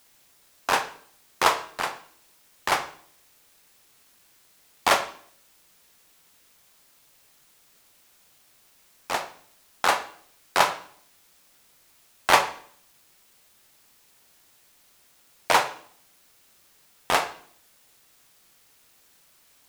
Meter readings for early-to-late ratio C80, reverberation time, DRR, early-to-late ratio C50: 15.5 dB, 0.55 s, 8.5 dB, 12.5 dB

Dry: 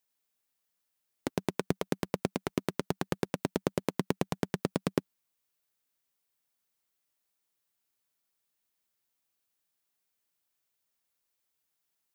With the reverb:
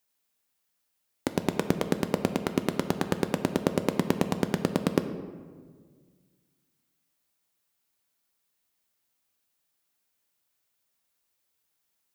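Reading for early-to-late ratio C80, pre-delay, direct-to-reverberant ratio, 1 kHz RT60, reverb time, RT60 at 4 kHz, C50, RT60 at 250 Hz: 11.5 dB, 3 ms, 8.0 dB, 1.5 s, 1.7 s, 0.90 s, 10.0 dB, 2.1 s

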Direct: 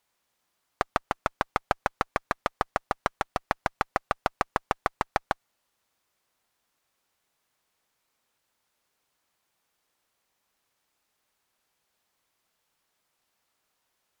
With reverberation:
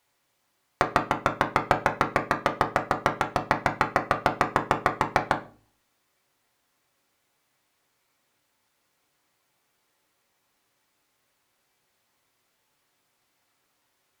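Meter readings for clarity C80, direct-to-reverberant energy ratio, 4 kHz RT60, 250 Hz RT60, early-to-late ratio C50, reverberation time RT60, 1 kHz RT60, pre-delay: 18.5 dB, 2.0 dB, 0.35 s, 0.55 s, 13.5 dB, 0.40 s, 0.35 s, 3 ms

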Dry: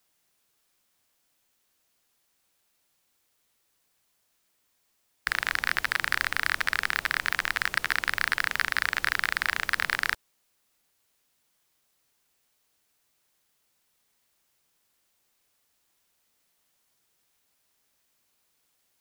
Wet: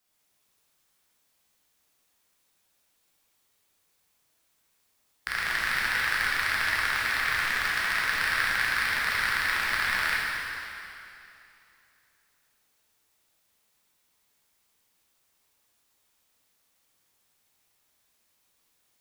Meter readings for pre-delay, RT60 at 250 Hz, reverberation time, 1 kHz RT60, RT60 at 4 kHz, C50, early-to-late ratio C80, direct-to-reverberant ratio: 7 ms, 2.8 s, 2.8 s, 2.7 s, 2.6 s, -3.5 dB, -1.5 dB, -7.0 dB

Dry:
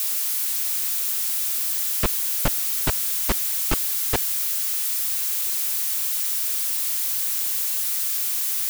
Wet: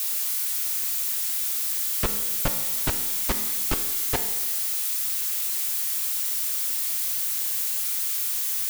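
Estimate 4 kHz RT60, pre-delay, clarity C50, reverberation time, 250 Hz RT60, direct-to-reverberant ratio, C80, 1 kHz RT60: 1.2 s, 4 ms, 9.0 dB, 1.2 s, 1.2 s, 6.0 dB, 10.5 dB, 1.2 s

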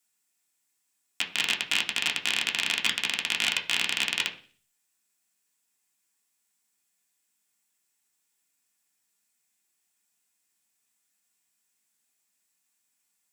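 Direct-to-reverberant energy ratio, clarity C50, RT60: -0.5 dB, 12.5 dB, 0.45 s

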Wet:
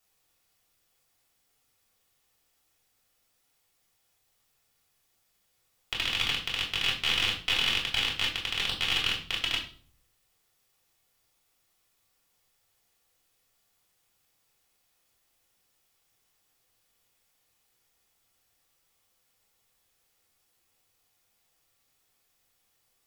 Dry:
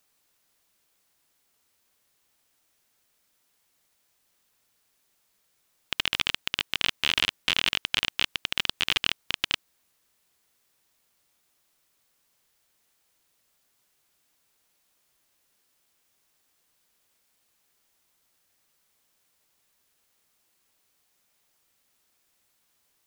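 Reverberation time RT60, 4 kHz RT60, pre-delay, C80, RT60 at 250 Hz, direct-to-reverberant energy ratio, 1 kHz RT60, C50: 0.45 s, 0.40 s, 3 ms, 12.5 dB, 0.80 s, -3.0 dB, 0.40 s, 8.0 dB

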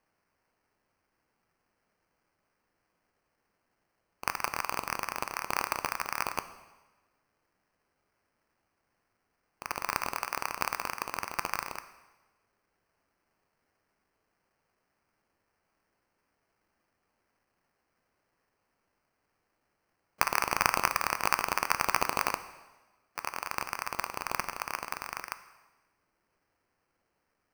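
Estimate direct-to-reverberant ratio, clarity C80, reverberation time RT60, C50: 11.0 dB, 15.0 dB, 1.2 s, 13.0 dB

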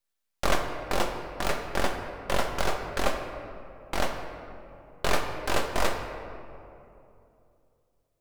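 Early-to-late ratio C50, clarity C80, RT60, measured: 5.5 dB, 6.5 dB, 2.8 s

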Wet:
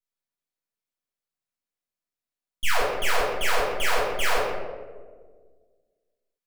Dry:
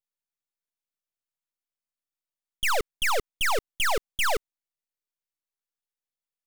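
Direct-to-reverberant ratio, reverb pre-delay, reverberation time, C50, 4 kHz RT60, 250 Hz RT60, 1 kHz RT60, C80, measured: -8.5 dB, 4 ms, 1.6 s, -0.5 dB, 0.75 s, 2.1 s, 1.3 s, 2.5 dB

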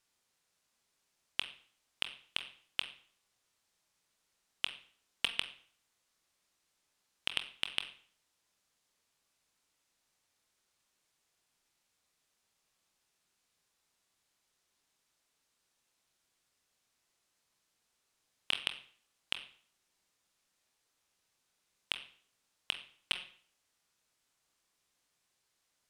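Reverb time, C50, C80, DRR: 0.50 s, 12.0 dB, 15.5 dB, 7.0 dB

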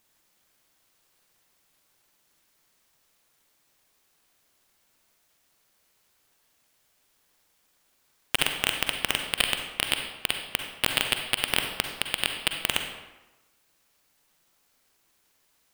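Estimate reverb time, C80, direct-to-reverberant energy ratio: 1.1 s, 7.5 dB, 4.5 dB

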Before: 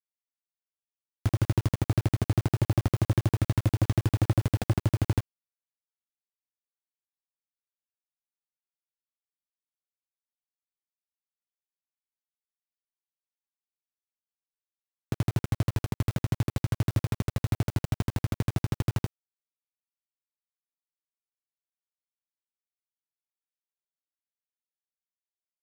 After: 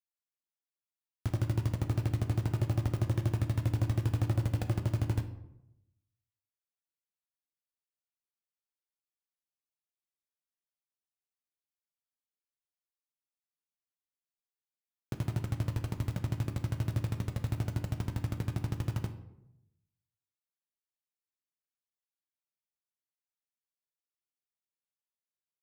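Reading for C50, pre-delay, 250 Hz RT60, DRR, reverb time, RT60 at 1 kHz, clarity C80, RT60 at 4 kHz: 11.0 dB, 3 ms, 0.95 s, 6.5 dB, 0.85 s, 0.80 s, 13.5 dB, 0.50 s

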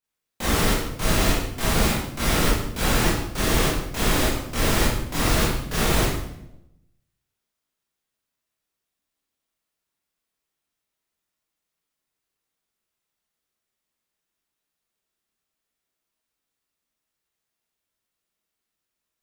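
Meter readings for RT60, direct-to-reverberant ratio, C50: 0.80 s, -9.5 dB, -1.0 dB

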